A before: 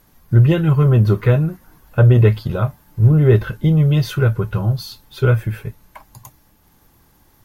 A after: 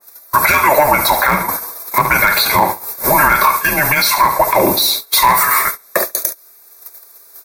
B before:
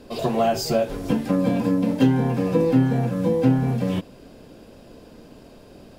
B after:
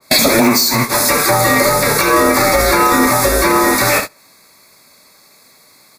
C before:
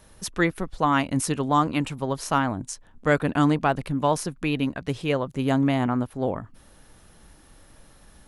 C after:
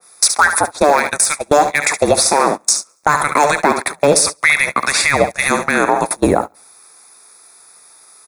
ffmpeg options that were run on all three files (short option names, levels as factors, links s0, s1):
-filter_complex "[0:a]highpass=f=560:w=0.5412,highpass=f=560:w=1.3066,afreqshift=-440,aeval=exprs='clip(val(0),-1,0.119)':c=same,aemphasis=mode=production:type=bsi,acompressor=threshold=0.0224:ratio=16,asplit=2[s0][s1];[s1]highpass=f=720:p=1,volume=2.82,asoftclip=type=tanh:threshold=0.119[s2];[s0][s2]amix=inputs=2:normalize=0,lowpass=f=6500:p=1,volume=0.501,asuperstop=centerf=3000:order=4:qfactor=2.6,acontrast=53,aecho=1:1:70|140|210|280|350:0.237|0.123|0.0641|0.0333|0.0173,agate=range=0.0562:threshold=0.0178:ratio=16:detection=peak,alimiter=level_in=12.6:limit=0.891:release=50:level=0:latency=1,adynamicequalizer=threshold=0.0562:dfrequency=1700:dqfactor=0.7:tfrequency=1700:tqfactor=0.7:attack=5:release=100:ratio=0.375:range=2:mode=cutabove:tftype=highshelf"